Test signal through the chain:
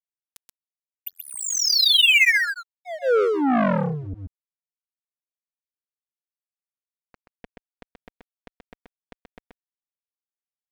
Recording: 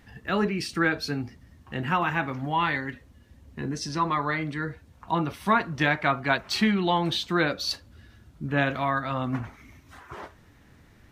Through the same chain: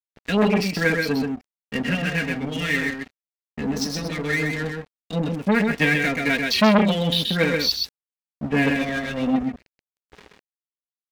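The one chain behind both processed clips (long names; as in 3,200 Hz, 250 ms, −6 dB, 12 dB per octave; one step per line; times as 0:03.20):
treble cut that deepens with the level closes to 2,900 Hz, closed at −20.5 dBFS
Chebyshev band-stop filter 470–2,000 Hz, order 2
gate on every frequency bin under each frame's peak −30 dB strong
dynamic equaliser 350 Hz, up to −4 dB, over −42 dBFS, Q 3.7
comb filter 4.3 ms, depth 84%
dead-zone distortion −39 dBFS
single-tap delay 129 ms −4.5 dB
saturating transformer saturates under 980 Hz
level +8.5 dB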